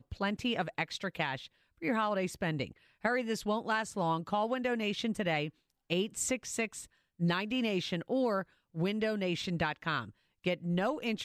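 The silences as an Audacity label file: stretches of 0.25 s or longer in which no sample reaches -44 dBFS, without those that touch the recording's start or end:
1.470000	1.820000	silence
2.710000	3.050000	silence
5.490000	5.900000	silence
6.850000	7.200000	silence
8.430000	8.750000	silence
10.100000	10.440000	silence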